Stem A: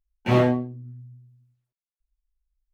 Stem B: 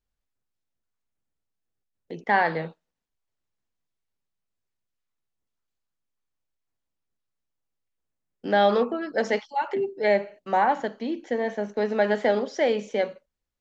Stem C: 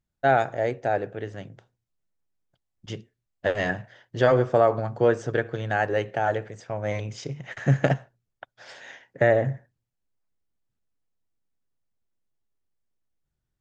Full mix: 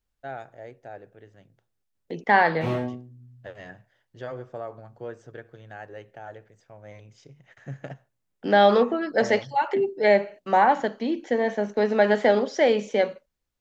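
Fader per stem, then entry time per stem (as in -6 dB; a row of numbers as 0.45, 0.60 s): -8.5, +3.0, -16.5 dB; 2.35, 0.00, 0.00 s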